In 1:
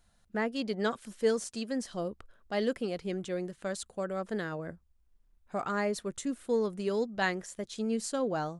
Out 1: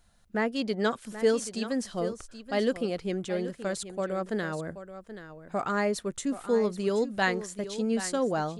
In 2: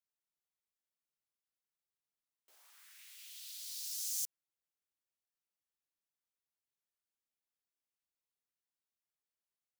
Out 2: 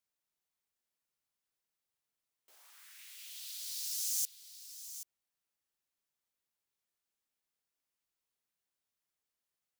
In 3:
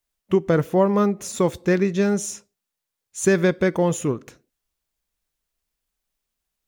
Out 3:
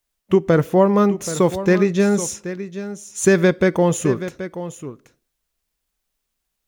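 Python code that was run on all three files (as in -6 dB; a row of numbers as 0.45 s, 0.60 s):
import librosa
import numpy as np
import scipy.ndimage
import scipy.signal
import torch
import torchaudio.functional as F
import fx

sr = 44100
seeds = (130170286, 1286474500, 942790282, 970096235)

y = x + 10.0 ** (-12.5 / 20.0) * np.pad(x, (int(779 * sr / 1000.0), 0))[:len(x)]
y = F.gain(torch.from_numpy(y), 3.5).numpy()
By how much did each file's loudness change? +3.5 LU, +2.0 LU, +3.0 LU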